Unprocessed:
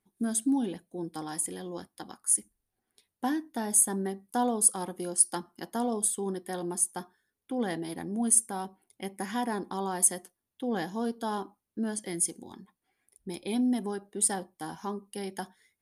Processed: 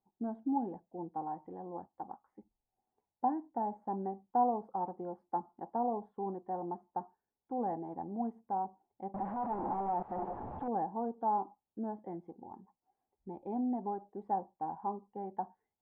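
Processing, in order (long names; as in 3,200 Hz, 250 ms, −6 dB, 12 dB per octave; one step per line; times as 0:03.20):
0:09.14–0:10.68: sign of each sample alone
transistor ladder low-pass 910 Hz, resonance 70%
level +3.5 dB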